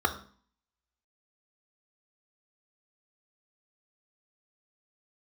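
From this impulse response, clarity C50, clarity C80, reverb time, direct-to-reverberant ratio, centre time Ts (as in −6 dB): 12.5 dB, 15.5 dB, 0.45 s, 6.0 dB, 10 ms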